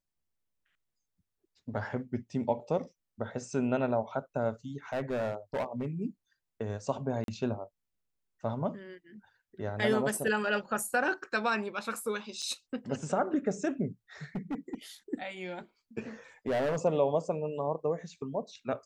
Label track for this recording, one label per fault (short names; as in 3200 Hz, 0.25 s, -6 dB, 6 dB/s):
4.930000	5.860000	clipped -28 dBFS
7.240000	7.280000	gap 42 ms
12.420000	12.420000	gap 4.9 ms
14.350000	14.750000	clipped -30.5 dBFS
16.470000	16.770000	clipped -26 dBFS